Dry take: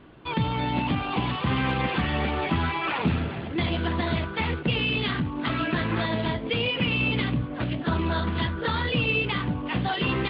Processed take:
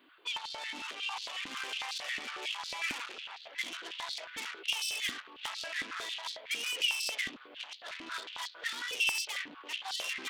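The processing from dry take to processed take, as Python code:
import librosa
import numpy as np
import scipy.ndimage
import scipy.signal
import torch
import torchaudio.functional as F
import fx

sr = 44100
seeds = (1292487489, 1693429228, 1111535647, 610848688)

y = 10.0 ** (-28.0 / 20.0) * np.tanh(x / 10.0 ** (-28.0 / 20.0))
y = np.diff(y, prepend=0.0)
y = fx.filter_held_highpass(y, sr, hz=11.0, low_hz=270.0, high_hz=4300.0)
y = F.gain(torch.from_numpy(y), 4.0).numpy()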